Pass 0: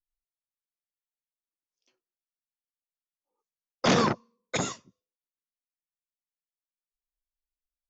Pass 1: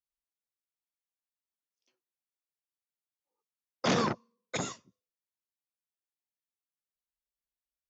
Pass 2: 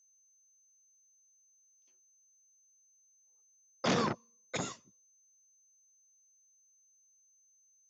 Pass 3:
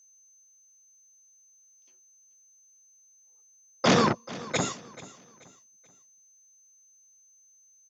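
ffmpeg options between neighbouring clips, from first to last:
ffmpeg -i in.wav -af "highpass=44,volume=-5dB" out.wav
ffmpeg -i in.wav -af "aeval=exprs='val(0)+0.000708*sin(2*PI*6200*n/s)':channel_layout=same,volume=-2.5dB" out.wav
ffmpeg -i in.wav -af "aecho=1:1:433|866|1299:0.126|0.0428|0.0146,volume=9dB" out.wav

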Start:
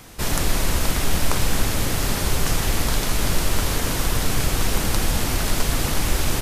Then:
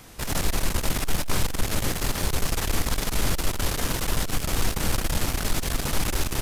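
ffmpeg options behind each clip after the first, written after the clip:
ffmpeg -i in.wav -af "aeval=exprs='(tanh(7.94*val(0)+0.65)-tanh(0.65))/7.94':channel_layout=same" out.wav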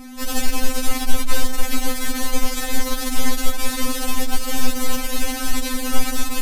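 ffmpeg -i in.wav -af "aeval=exprs='val(0)+0.02*(sin(2*PI*50*n/s)+sin(2*PI*2*50*n/s)/2+sin(2*PI*3*50*n/s)/3+sin(2*PI*4*50*n/s)/4+sin(2*PI*5*50*n/s)/5)':channel_layout=same,afftfilt=real='re*3.46*eq(mod(b,12),0)':imag='im*3.46*eq(mod(b,12),0)':win_size=2048:overlap=0.75,volume=5.5dB" out.wav

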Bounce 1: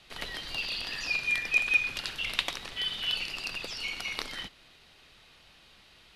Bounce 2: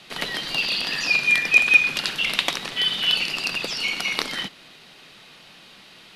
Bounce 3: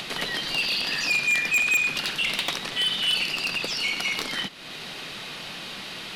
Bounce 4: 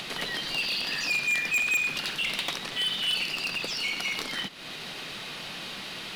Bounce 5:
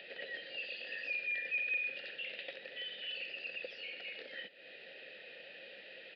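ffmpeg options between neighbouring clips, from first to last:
ffmpeg -i in.wav -af "lowshelf=frequency=110:width_type=q:width=1.5:gain=-13.5,alimiter=level_in=11dB:limit=-1dB:release=50:level=0:latency=1,volume=-1dB" out.wav
ffmpeg -i in.wav -af "acompressor=mode=upward:threshold=-25dB:ratio=2.5,asoftclip=type=tanh:threshold=-17.5dB" out.wav
ffmpeg -i in.wav -filter_complex "[0:a]asplit=2[link_01][link_02];[link_02]alimiter=level_in=5.5dB:limit=-24dB:level=0:latency=1:release=144,volume=-5.5dB,volume=-2dB[link_03];[link_01][link_03]amix=inputs=2:normalize=0,acrusher=bits=7:mode=log:mix=0:aa=0.000001,volume=-5.5dB" out.wav
ffmpeg -i in.wav -filter_complex "[0:a]asplit=3[link_01][link_02][link_03];[link_01]bandpass=frequency=530:width_type=q:width=8,volume=0dB[link_04];[link_02]bandpass=frequency=1840:width_type=q:width=8,volume=-6dB[link_05];[link_03]bandpass=frequency=2480:width_type=q:width=8,volume=-9dB[link_06];[link_04][link_05][link_06]amix=inputs=3:normalize=0,aresample=11025,aresample=44100,volume=-1dB" out.wav

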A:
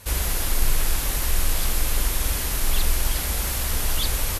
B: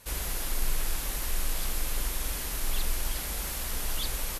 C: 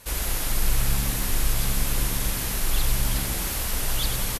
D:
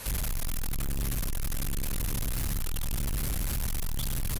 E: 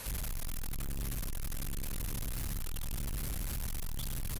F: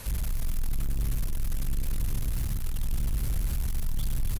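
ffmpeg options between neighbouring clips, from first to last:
ffmpeg -i in.wav -af "equalizer=frequency=84:width_type=o:width=0.55:gain=-12.5,volume=-7.5dB" out.wav
ffmpeg -i in.wav -filter_complex "[0:a]asplit=8[link_01][link_02][link_03][link_04][link_05][link_06][link_07][link_08];[link_02]adelay=98,afreqshift=-70,volume=-7.5dB[link_09];[link_03]adelay=196,afreqshift=-140,volume=-12.9dB[link_10];[link_04]adelay=294,afreqshift=-210,volume=-18.2dB[link_11];[link_05]adelay=392,afreqshift=-280,volume=-23.6dB[link_12];[link_06]adelay=490,afreqshift=-350,volume=-28.9dB[link_13];[link_07]adelay=588,afreqshift=-420,volume=-34.3dB[link_14];[link_08]adelay=686,afreqshift=-490,volume=-39.6dB[link_15];[link_01][link_09][link_10][link_11][link_12][link_13][link_14][link_15]amix=inputs=8:normalize=0,volume=5dB" out.wav
ffmpeg -i in.wav -filter_complex "[0:a]acrossover=split=190|7100[link_01][link_02][link_03];[link_01]acompressor=threshold=-26dB:ratio=4[link_04];[link_02]acompressor=threshold=-46dB:ratio=4[link_05];[link_03]acompressor=threshold=-42dB:ratio=4[link_06];[link_04][link_05][link_06]amix=inputs=3:normalize=0,volume=35.5dB,asoftclip=hard,volume=-35.5dB,volume=8dB" out.wav
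ffmpeg -i in.wav -af "alimiter=level_in=8.5dB:limit=-24dB:level=0:latency=1,volume=-8.5dB,volume=-1.5dB" out.wav
ffmpeg -i in.wav -filter_complex "[0:a]lowshelf=frequency=200:gain=9.5,asplit=2[link_01][link_02];[link_02]aecho=0:1:283:0.316[link_03];[link_01][link_03]amix=inputs=2:normalize=0" out.wav

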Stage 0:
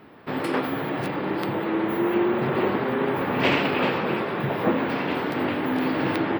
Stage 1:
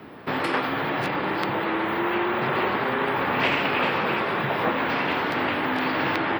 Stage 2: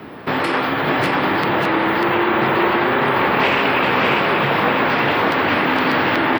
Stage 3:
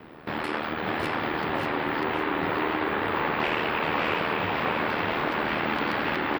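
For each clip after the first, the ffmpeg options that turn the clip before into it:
ffmpeg -i in.wav -filter_complex "[0:a]acrossover=split=87|700|3100|7300[link_01][link_02][link_03][link_04][link_05];[link_01]acompressor=threshold=-53dB:ratio=4[link_06];[link_02]acompressor=threshold=-36dB:ratio=4[link_07];[link_03]acompressor=threshold=-28dB:ratio=4[link_08];[link_04]acompressor=threshold=-44dB:ratio=4[link_09];[link_05]acompressor=threshold=-59dB:ratio=4[link_10];[link_06][link_07][link_08][link_09][link_10]amix=inputs=5:normalize=0,volume=6dB" out.wav
ffmpeg -i in.wav -filter_complex "[0:a]asplit=2[link_01][link_02];[link_02]alimiter=limit=-19dB:level=0:latency=1,volume=3dB[link_03];[link_01][link_03]amix=inputs=2:normalize=0,aecho=1:1:594:0.708" out.wav
ffmpeg -i in.wav -af "aeval=exprs='val(0)*sin(2*PI*39*n/s)':channel_layout=same,aecho=1:1:556|1112|1668|2224|2780:0.447|0.179|0.0715|0.0286|0.0114,volume=-8dB" out.wav

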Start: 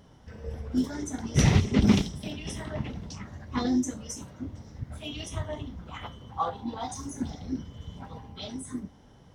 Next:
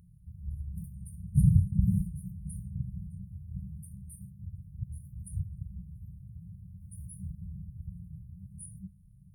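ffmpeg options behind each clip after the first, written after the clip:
ffmpeg -i in.wav -af "afftfilt=real='re*(1-between(b*sr/4096,200,8900))':imag='im*(1-between(b*sr/4096,200,8900))':win_size=4096:overlap=0.75" out.wav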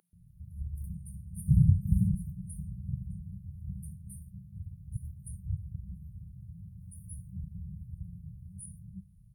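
ffmpeg -i in.wav -filter_complex "[0:a]acrossover=split=330[link_01][link_02];[link_01]adelay=130[link_03];[link_03][link_02]amix=inputs=2:normalize=0" out.wav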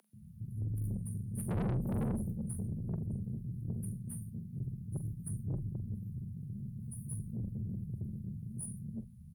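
ffmpeg -i in.wav -filter_complex "[0:a]aeval=exprs='(tanh(70.8*val(0)+0.25)-tanh(0.25))/70.8':channel_layout=same,asplit=2[link_01][link_02];[link_02]adelay=44,volume=-13dB[link_03];[link_01][link_03]amix=inputs=2:normalize=0,afreqshift=35,volume=5dB" out.wav

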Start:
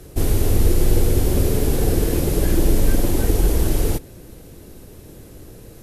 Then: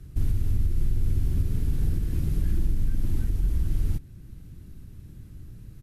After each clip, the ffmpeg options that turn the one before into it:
ffmpeg -i in.wav -af "firequalizer=gain_entry='entry(130,0);entry(480,-24);entry(1300,-12);entry(7300,-17)':delay=0.05:min_phase=1,alimiter=limit=-15dB:level=0:latency=1:release=477" out.wav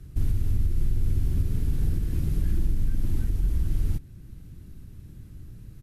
ffmpeg -i in.wav -af anull out.wav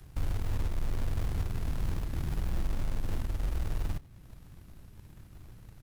ffmpeg -i in.wav -filter_complex "[0:a]acrossover=split=290|530[link_01][link_02][link_03];[link_01]acrusher=bits=3:mode=log:mix=0:aa=0.000001[link_04];[link_03]acompressor=mode=upward:threshold=-55dB:ratio=2.5[link_05];[link_04][link_02][link_05]amix=inputs=3:normalize=0,volume=-7.5dB" out.wav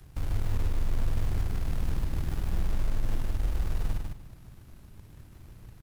ffmpeg -i in.wav -af "aecho=1:1:151|302|453:0.631|0.145|0.0334" out.wav

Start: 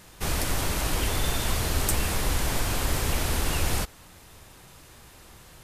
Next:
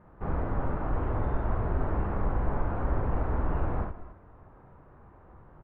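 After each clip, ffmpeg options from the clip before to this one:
ffmpeg -i in.wav -filter_complex "[0:a]lowpass=frequency=1300:width=0.5412,lowpass=frequency=1300:width=1.3066,asplit=2[link_01][link_02];[link_02]aecho=0:1:46|66|159|275|278:0.596|0.447|0.126|0.126|0.112[link_03];[link_01][link_03]amix=inputs=2:normalize=0,volume=-3dB" out.wav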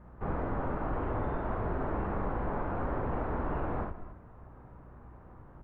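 ffmpeg -i in.wav -filter_complex "[0:a]acrossover=split=160|300|990[link_01][link_02][link_03][link_04];[link_01]acompressor=threshold=-33dB:ratio=6[link_05];[link_05][link_02][link_03][link_04]amix=inputs=4:normalize=0,aeval=exprs='val(0)+0.002*(sin(2*PI*60*n/s)+sin(2*PI*2*60*n/s)/2+sin(2*PI*3*60*n/s)/3+sin(2*PI*4*60*n/s)/4+sin(2*PI*5*60*n/s)/5)':channel_layout=same" out.wav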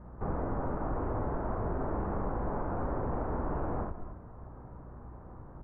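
ffmpeg -i in.wav -af "lowpass=1300,acompressor=threshold=-40dB:ratio=1.5,volume=4dB" out.wav

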